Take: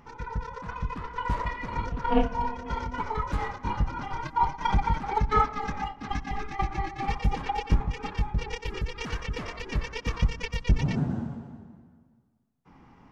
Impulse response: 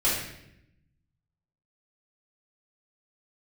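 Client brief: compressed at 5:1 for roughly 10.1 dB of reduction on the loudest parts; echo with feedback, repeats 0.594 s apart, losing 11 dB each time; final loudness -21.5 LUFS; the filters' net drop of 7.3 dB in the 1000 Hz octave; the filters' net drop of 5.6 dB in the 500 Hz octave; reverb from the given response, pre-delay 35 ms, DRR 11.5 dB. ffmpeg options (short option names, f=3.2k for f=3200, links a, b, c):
-filter_complex "[0:a]equalizer=f=500:t=o:g=-5,equalizer=f=1k:t=o:g=-7.5,acompressor=threshold=-29dB:ratio=5,aecho=1:1:594|1188|1782:0.282|0.0789|0.0221,asplit=2[a][b];[1:a]atrim=start_sample=2205,adelay=35[c];[b][c]afir=irnorm=-1:irlink=0,volume=-24dB[d];[a][d]amix=inputs=2:normalize=0,volume=15dB"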